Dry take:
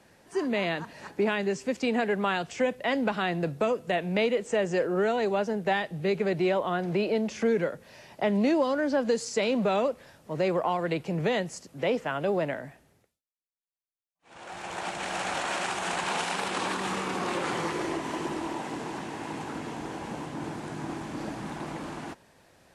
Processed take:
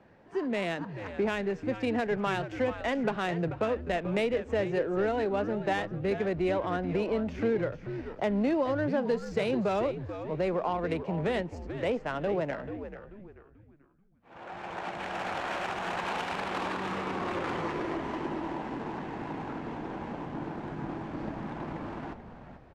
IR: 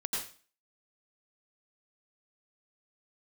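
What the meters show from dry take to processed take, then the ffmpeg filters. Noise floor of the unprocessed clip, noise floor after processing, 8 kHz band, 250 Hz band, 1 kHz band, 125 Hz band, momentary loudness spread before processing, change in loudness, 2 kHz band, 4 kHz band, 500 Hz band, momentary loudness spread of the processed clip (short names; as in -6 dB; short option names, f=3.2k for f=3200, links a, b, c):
-78 dBFS, -56 dBFS, under -10 dB, -2.0 dB, -2.5 dB, -0.5 dB, 11 LU, -2.5 dB, -3.5 dB, -6.5 dB, -2.5 dB, 9 LU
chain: -filter_complex "[0:a]asplit=2[a][b];[b]acompressor=threshold=-40dB:ratio=6,volume=-1dB[c];[a][c]amix=inputs=2:normalize=0,asplit=5[d][e][f][g][h];[e]adelay=437,afreqshift=-97,volume=-9.5dB[i];[f]adelay=874,afreqshift=-194,volume=-18.9dB[j];[g]adelay=1311,afreqshift=-291,volume=-28.2dB[k];[h]adelay=1748,afreqshift=-388,volume=-37.6dB[l];[d][i][j][k][l]amix=inputs=5:normalize=0,adynamicsmooth=sensitivity=2:basefreq=2k,volume=-4dB"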